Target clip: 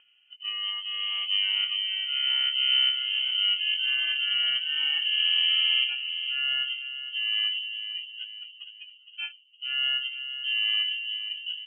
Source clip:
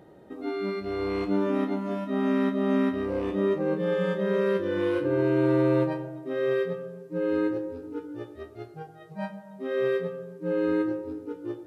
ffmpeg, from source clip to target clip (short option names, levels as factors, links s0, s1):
-filter_complex "[0:a]agate=range=0.0282:threshold=0.0158:ratio=16:detection=peak,afftdn=nr=13:nf=-38,acompressor=mode=upward:threshold=0.0158:ratio=2.5,asplit=2[s0][s1];[s1]adelay=462,lowpass=f=1100:p=1,volume=0.376,asplit=2[s2][s3];[s3]adelay=462,lowpass=f=1100:p=1,volume=0.49,asplit=2[s4][s5];[s5]adelay=462,lowpass=f=1100:p=1,volume=0.49,asplit=2[s6][s7];[s7]adelay=462,lowpass=f=1100:p=1,volume=0.49,asplit=2[s8][s9];[s9]adelay=462,lowpass=f=1100:p=1,volume=0.49,asplit=2[s10][s11];[s11]adelay=462,lowpass=f=1100:p=1,volume=0.49[s12];[s0][s2][s4][s6][s8][s10][s12]amix=inputs=7:normalize=0,lowpass=f=2800:t=q:w=0.5098,lowpass=f=2800:t=q:w=0.6013,lowpass=f=2800:t=q:w=0.9,lowpass=f=2800:t=q:w=2.563,afreqshift=-3300,volume=0.841"